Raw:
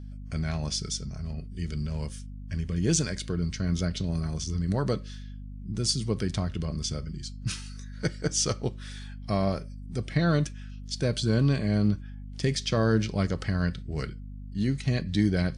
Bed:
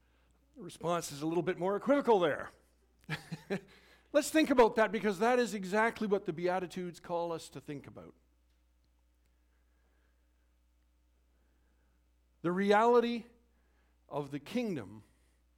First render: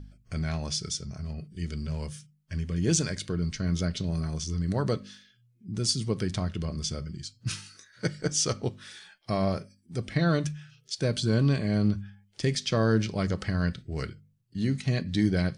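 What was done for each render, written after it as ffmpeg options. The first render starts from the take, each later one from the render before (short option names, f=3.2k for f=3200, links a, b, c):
-af "bandreject=f=50:t=h:w=4,bandreject=f=100:t=h:w=4,bandreject=f=150:t=h:w=4,bandreject=f=200:t=h:w=4,bandreject=f=250:t=h:w=4"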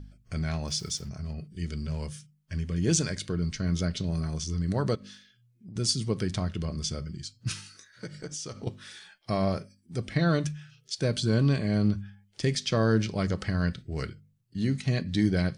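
-filter_complex "[0:a]asettb=1/sr,asplit=3[a][b][c];[a]atrim=end=0.674[d];[b]atrim=start=0.67:end=1.09,asetpts=PTS-STARTPTS,afade=t=in:d=0.004:c=qsin,afade=t=out:st=0.416:d=0.004:c=qsin,aeval=exprs='val(0)*gte(abs(val(0)),0.00355)':c=same[e];[c]atrim=start=1.086[f];[d][e]acrossfade=d=0.004:c1=hsin:c2=qsin[g];[g][f]acrossfade=d=0.004:c1=qsin:c2=hsin,asettb=1/sr,asplit=3[h][i][j];[h]atrim=end=4.954[k];[i]atrim=start=4.95:end=5.76,asetpts=PTS-STARTPTS,afade=t=in:d=0.004:c=qsin,afade=t=out:st=0.806:d=0.004:c=qsin,acompressor=threshold=-41dB:ratio=5:attack=3.2:release=140:knee=1:detection=peak[l];[j]atrim=start=5.756[m];[k][l]acrossfade=d=0.004:c1=hsin:c2=qsin[n];[n][m]acrossfade=d=0.004:c1=qsin:c2=hsin,asettb=1/sr,asplit=3[o][p][q];[o]atrim=end=7.524[r];[p]atrim=start=7.52:end=8.67,asetpts=PTS-STARTPTS,afade=t=in:d=0.004:c=qsin,afade=t=out:st=1.146:d=0.004:c=qsin,acompressor=threshold=-33dB:ratio=16:attack=3.2:release=140:knee=1:detection=peak[s];[q]atrim=start=8.666[t];[r][s]acrossfade=d=0.004:c1=hsin:c2=qsin[u];[u][t]acrossfade=d=0.004:c1=qsin:c2=hsin"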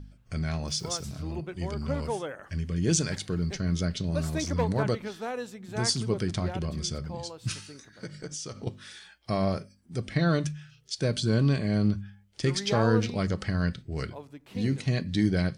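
-filter_complex "[1:a]volume=-5.5dB[a];[0:a][a]amix=inputs=2:normalize=0"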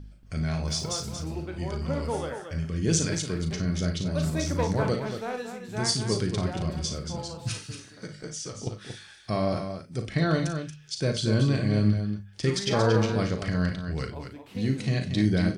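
-filter_complex "[0:a]asplit=2[a][b];[b]adelay=38,volume=-9dB[c];[a][c]amix=inputs=2:normalize=0,aecho=1:1:55.39|230.3:0.316|0.398"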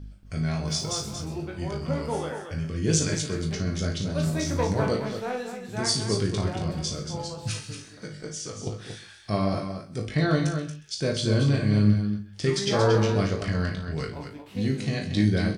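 -filter_complex "[0:a]asplit=2[a][b];[b]adelay=20,volume=-5dB[c];[a][c]amix=inputs=2:normalize=0,aecho=1:1:130:0.141"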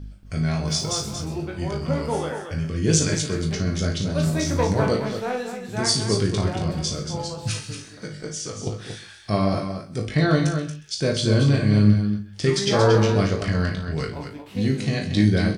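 -af "volume=4dB"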